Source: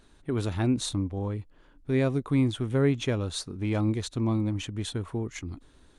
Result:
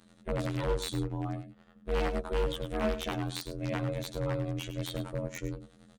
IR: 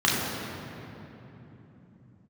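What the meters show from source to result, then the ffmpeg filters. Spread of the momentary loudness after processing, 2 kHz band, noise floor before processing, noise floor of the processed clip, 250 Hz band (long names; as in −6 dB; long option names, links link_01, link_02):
7 LU, −2.0 dB, −59 dBFS, −61 dBFS, −9.0 dB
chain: -filter_complex "[0:a]adynamicequalizer=threshold=0.0141:dfrequency=250:dqfactor=0.83:tfrequency=250:tqfactor=0.83:attack=5:release=100:ratio=0.375:range=2:mode=cutabove:tftype=bell,afftfilt=real='hypot(re,im)*cos(PI*b)':imag='0':win_size=2048:overlap=0.75,aeval=exprs='val(0)*sin(2*PI*210*n/s)':channel_layout=same,aeval=exprs='0.0473*(abs(mod(val(0)/0.0473+3,4)-2)-1)':channel_layout=same,asplit=2[link_01][link_02];[link_02]aecho=0:1:103:0.251[link_03];[link_01][link_03]amix=inputs=2:normalize=0,volume=4.5dB"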